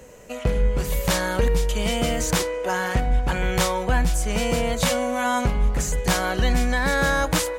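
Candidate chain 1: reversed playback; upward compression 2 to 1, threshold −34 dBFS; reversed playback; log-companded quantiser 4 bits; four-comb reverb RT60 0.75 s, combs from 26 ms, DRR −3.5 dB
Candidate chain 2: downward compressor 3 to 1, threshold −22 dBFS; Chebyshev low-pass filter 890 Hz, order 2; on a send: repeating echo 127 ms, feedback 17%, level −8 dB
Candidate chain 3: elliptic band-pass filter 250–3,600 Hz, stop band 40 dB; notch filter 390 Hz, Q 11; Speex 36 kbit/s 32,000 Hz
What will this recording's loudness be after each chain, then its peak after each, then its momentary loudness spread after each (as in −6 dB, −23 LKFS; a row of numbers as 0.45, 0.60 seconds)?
−18.5, −28.0, −26.0 LKFS; −4.0, −13.0, −10.0 dBFS; 3, 2, 8 LU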